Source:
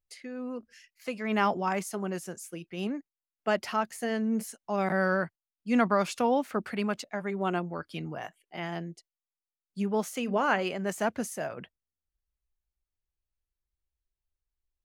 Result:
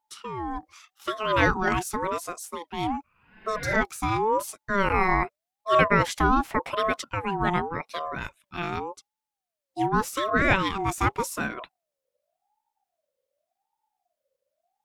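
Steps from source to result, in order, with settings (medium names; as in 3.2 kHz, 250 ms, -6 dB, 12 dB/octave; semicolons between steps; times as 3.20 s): spectral replace 3.07–3.72 s, 510–4200 Hz both; ring modulator with a swept carrier 700 Hz, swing 25%, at 0.87 Hz; trim +7.5 dB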